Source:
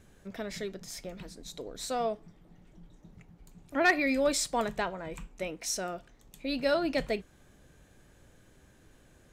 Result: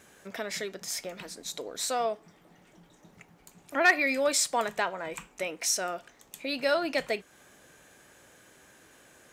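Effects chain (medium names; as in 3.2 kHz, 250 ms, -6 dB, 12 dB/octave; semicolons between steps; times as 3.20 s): in parallel at +1 dB: compression, threshold -39 dBFS, peak gain reduction 18.5 dB; on the sum: high-pass 790 Hz 6 dB/octave; peaking EQ 3.9 kHz -3 dB 0.77 oct; trim +3.5 dB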